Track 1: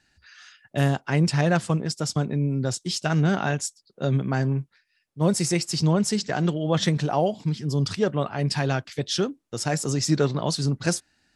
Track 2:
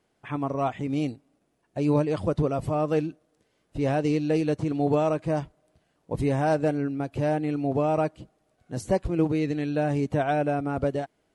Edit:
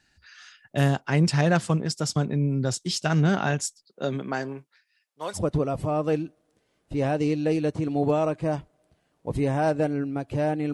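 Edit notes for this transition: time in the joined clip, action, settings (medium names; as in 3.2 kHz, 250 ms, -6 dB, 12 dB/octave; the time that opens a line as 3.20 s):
track 1
3.83–5.39 s: high-pass 180 Hz -> 960 Hz
5.36 s: go over to track 2 from 2.20 s, crossfade 0.06 s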